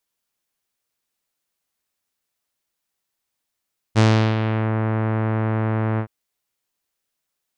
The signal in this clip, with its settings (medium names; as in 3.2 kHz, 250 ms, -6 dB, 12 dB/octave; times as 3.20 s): synth note saw A2 24 dB/octave, low-pass 2 kHz, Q 0.75, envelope 2 oct, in 0.76 s, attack 34 ms, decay 0.37 s, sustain -8 dB, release 0.08 s, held 2.04 s